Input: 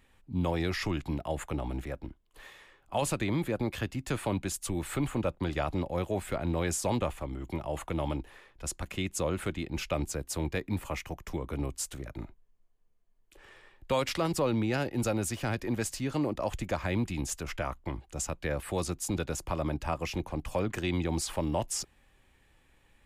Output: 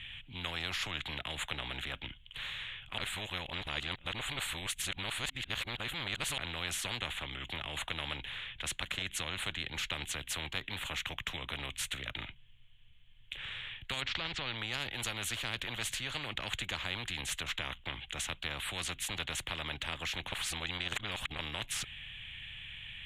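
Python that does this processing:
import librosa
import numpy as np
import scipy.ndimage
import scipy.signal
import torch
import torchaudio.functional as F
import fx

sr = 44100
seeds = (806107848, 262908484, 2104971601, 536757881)

y = fx.lowpass(x, sr, hz=5000.0, slope=24, at=(14.0, 14.57), fade=0.02)
y = fx.edit(y, sr, fx.reverse_span(start_s=2.98, length_s=3.4),
    fx.reverse_span(start_s=20.32, length_s=1.07), tone=tone)
y = fx.curve_eq(y, sr, hz=(120.0, 340.0, 1100.0, 3300.0, 4900.0, 7100.0, 13000.0), db=(0, -28, -17, 13, -28, -18, -23))
y = fx.over_compress(y, sr, threshold_db=-31.0, ratio=-1.0)
y = fx.spectral_comp(y, sr, ratio=4.0)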